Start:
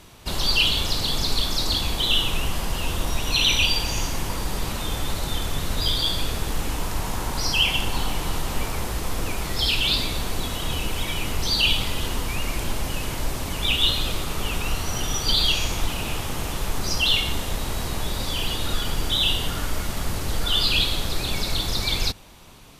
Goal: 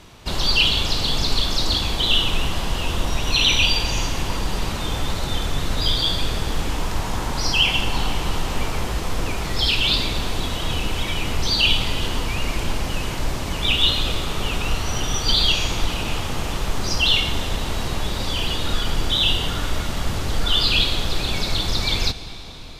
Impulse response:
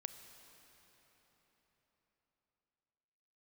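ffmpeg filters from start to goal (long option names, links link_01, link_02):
-filter_complex "[0:a]asplit=2[link_01][link_02];[1:a]atrim=start_sample=2205,asetrate=29988,aresample=44100,lowpass=8300[link_03];[link_02][link_03]afir=irnorm=-1:irlink=0,volume=2.5dB[link_04];[link_01][link_04]amix=inputs=2:normalize=0,volume=-3.5dB"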